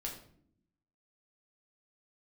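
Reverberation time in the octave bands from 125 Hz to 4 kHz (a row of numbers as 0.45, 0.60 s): 1.1, 1.2, 0.70, 0.50, 0.45, 0.40 s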